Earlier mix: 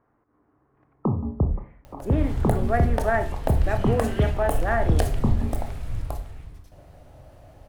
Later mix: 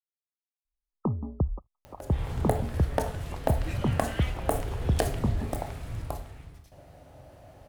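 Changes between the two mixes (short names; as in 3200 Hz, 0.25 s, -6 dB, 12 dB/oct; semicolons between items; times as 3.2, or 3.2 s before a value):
speech: muted; first sound: send off; second sound: add HPF 98 Hz 6 dB/oct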